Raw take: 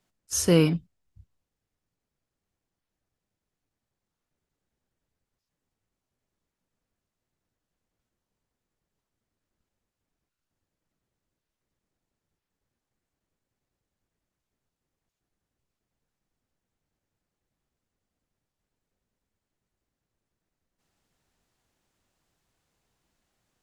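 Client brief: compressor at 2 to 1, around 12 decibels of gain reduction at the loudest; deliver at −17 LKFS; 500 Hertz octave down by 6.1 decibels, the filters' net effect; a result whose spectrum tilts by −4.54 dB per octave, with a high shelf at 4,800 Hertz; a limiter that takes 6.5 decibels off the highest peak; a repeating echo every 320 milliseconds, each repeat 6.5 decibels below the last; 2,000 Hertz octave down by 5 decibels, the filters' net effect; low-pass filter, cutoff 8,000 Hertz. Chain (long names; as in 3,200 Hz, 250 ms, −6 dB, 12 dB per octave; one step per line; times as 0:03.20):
low-pass filter 8,000 Hz
parametric band 500 Hz −7 dB
parametric band 2,000 Hz −5.5 dB
high-shelf EQ 4,800 Hz −3.5 dB
downward compressor 2 to 1, threshold −40 dBFS
brickwall limiter −29.5 dBFS
repeating echo 320 ms, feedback 47%, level −6.5 dB
level +25 dB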